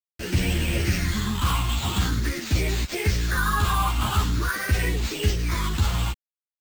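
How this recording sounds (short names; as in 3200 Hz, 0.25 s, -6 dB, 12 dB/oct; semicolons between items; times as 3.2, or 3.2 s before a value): a quantiser's noise floor 6-bit, dither none; phasing stages 6, 0.45 Hz, lowest notch 480–1200 Hz; aliases and images of a low sample rate 11000 Hz, jitter 0%; a shimmering, thickened sound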